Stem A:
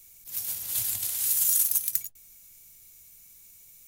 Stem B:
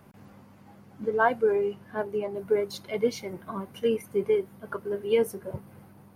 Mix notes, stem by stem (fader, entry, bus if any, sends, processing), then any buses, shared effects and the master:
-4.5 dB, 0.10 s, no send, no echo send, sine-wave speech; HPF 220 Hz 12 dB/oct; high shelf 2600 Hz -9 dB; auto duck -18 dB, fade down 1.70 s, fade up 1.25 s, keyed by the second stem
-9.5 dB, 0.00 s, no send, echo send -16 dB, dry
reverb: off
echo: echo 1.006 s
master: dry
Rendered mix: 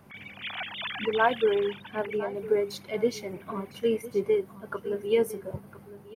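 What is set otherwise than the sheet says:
stem A -4.5 dB -> +4.5 dB; stem B -9.5 dB -> -0.5 dB

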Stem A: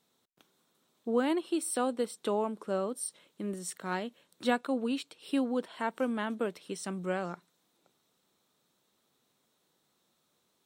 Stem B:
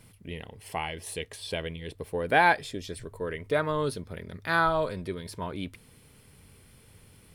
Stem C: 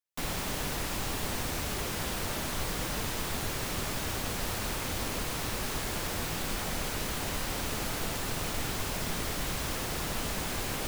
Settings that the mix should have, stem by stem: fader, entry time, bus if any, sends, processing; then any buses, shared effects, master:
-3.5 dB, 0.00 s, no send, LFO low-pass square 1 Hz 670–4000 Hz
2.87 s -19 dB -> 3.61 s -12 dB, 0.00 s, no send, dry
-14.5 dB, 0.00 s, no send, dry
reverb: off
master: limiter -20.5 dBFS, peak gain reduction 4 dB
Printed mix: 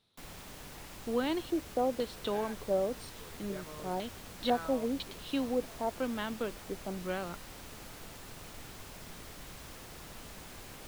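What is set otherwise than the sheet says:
stem B -19.0 dB -> -27.0 dB; master: missing limiter -20.5 dBFS, peak gain reduction 4 dB

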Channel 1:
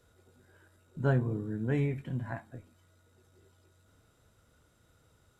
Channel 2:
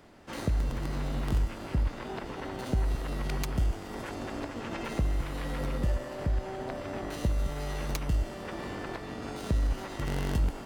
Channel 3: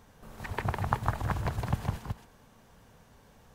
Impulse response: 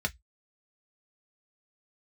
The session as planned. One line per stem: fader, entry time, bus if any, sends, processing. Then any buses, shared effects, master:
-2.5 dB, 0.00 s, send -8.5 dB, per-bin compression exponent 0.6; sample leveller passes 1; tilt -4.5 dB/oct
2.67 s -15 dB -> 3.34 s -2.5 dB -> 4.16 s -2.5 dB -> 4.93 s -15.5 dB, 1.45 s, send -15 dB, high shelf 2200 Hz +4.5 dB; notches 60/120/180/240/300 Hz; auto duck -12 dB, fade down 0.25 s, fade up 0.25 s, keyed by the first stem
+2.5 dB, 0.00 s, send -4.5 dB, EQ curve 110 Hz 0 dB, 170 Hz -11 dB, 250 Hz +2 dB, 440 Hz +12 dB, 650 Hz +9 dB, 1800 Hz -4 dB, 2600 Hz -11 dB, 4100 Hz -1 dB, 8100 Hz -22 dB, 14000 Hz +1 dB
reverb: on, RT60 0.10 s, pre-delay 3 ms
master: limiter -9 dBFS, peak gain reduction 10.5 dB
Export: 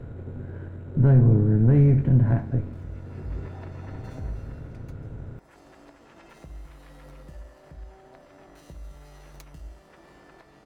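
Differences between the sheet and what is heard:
stem 1: send off; stem 3: muted

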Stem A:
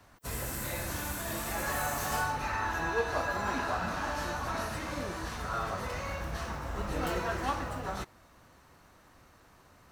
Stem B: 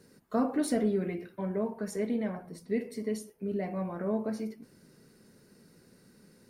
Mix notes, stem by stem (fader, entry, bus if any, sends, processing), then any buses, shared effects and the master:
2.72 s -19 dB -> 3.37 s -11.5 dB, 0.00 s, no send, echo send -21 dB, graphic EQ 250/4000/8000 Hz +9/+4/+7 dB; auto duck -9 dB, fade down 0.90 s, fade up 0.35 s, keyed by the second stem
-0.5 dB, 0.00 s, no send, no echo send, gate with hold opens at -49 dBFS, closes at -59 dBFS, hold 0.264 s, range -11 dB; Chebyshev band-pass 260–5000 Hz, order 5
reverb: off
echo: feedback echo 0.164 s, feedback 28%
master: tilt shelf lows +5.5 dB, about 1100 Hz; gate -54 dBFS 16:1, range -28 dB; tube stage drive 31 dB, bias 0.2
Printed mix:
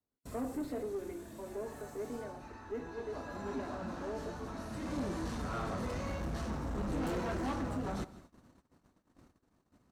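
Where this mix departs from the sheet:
stem A -19.0 dB -> -11.5 dB; stem B -0.5 dB -> -9.5 dB

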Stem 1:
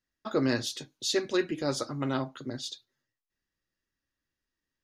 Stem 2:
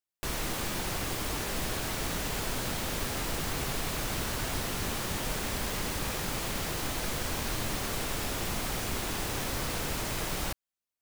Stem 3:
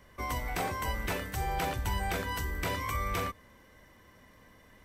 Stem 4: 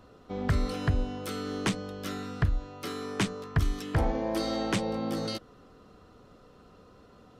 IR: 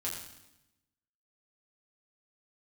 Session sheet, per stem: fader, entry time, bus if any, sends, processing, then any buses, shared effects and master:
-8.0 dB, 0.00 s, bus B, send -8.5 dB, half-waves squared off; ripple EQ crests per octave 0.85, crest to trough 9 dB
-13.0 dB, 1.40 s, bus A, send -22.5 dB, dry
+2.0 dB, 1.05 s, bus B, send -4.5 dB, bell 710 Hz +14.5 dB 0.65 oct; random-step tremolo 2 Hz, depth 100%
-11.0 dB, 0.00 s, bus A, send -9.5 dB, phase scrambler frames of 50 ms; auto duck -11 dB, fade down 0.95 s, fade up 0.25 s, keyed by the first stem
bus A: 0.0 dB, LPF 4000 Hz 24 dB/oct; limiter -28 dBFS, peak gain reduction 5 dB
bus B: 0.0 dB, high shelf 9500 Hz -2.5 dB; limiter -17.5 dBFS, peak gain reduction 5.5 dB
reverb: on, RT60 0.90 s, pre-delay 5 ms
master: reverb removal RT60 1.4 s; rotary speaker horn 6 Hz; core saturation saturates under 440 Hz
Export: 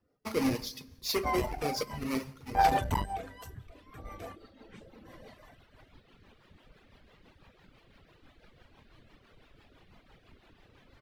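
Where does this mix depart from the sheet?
stem 1: send -8.5 dB -> -2.5 dB; stem 2 -13.0 dB -> -20.5 dB; stem 4 -11.0 dB -> -20.0 dB

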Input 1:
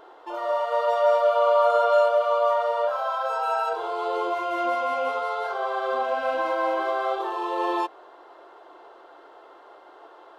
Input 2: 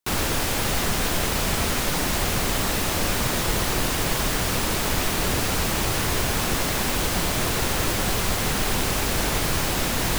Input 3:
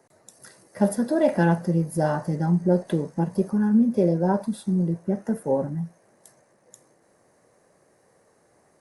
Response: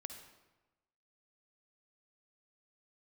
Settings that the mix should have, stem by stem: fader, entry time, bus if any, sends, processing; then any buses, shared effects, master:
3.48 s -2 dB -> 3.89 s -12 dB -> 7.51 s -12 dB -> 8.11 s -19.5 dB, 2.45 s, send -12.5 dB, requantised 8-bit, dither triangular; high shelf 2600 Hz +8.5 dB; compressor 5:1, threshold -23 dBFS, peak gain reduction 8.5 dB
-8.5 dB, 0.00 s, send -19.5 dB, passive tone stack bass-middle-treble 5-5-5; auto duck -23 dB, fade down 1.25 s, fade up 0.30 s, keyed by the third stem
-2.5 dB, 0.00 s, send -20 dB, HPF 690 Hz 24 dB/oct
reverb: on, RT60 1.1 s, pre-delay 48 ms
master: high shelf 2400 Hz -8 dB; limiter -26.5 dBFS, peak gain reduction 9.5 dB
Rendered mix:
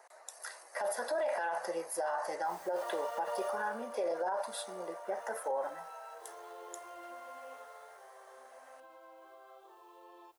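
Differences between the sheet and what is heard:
stem 1 -2.0 dB -> -11.5 dB; stem 2: muted; stem 3 -2.5 dB -> +8.0 dB

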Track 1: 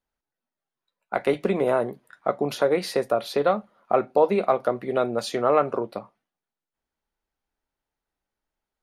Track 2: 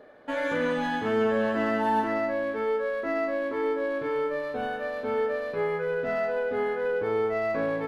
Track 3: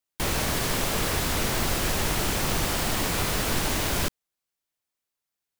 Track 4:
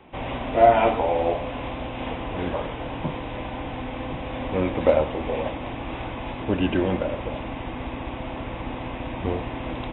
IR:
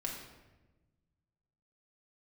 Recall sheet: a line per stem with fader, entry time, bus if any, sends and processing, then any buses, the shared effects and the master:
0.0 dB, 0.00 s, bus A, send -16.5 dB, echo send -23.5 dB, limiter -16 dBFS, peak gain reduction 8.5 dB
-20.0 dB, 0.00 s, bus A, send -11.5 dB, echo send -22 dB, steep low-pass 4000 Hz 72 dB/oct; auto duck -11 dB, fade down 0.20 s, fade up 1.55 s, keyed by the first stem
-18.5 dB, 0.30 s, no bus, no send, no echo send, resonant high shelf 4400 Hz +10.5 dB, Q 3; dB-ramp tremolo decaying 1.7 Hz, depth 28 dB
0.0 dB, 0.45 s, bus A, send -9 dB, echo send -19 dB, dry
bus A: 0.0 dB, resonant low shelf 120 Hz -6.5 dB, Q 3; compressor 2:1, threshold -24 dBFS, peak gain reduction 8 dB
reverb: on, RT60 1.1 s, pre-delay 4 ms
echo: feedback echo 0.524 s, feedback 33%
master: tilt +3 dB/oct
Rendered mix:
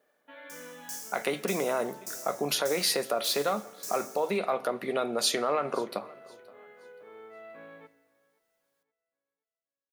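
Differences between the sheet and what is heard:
stem 3 -18.5 dB -> -26.5 dB; stem 4: muted

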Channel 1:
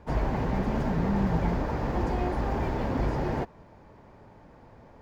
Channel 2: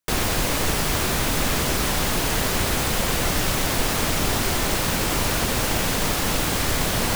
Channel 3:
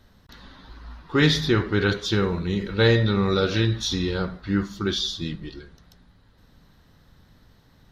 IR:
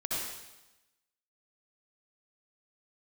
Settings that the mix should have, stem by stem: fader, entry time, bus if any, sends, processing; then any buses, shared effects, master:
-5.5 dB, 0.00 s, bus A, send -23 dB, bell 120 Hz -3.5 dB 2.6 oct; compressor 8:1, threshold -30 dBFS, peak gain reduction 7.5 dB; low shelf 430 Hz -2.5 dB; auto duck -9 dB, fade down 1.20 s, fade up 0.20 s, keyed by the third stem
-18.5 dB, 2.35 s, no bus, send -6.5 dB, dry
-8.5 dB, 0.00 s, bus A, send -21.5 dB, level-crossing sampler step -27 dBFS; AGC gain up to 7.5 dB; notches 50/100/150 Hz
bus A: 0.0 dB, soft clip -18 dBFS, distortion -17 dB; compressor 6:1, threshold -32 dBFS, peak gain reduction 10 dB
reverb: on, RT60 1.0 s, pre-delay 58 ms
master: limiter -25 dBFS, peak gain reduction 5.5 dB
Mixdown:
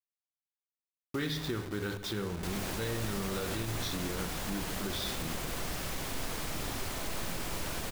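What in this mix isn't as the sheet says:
stem 1: muted; stem 3: missing AGC gain up to 7.5 dB

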